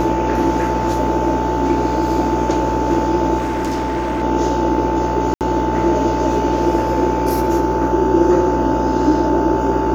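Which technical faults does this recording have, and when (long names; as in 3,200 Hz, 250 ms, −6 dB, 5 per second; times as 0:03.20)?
mains buzz 60 Hz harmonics 26 −23 dBFS
whistle 880 Hz −20 dBFS
0:03.38–0:04.23: clipping −17 dBFS
0:05.34–0:05.41: drop-out 68 ms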